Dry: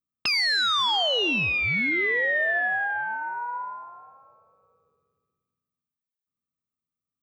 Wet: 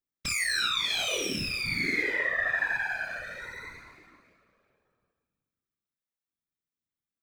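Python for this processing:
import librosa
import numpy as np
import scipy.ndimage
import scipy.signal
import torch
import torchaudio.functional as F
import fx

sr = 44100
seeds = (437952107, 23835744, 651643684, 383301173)

y = fx.lower_of_two(x, sr, delay_ms=0.54)
y = fx.room_early_taps(y, sr, ms=(28, 55), db=(-6.5, -9.5))
y = fx.whisperise(y, sr, seeds[0])
y = F.gain(torch.from_numpy(y), -5.0).numpy()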